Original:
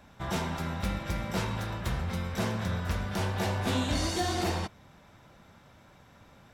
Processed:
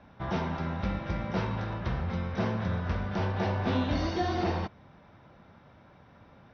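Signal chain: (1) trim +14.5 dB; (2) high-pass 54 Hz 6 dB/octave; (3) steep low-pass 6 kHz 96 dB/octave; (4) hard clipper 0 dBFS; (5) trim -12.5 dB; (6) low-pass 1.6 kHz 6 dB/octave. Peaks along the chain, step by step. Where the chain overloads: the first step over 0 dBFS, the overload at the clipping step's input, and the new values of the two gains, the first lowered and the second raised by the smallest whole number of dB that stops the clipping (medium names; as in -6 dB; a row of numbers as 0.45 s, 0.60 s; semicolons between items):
-4.5 dBFS, -4.0 dBFS, -4.0 dBFS, -4.0 dBFS, -16.5 dBFS, -18.0 dBFS; nothing clips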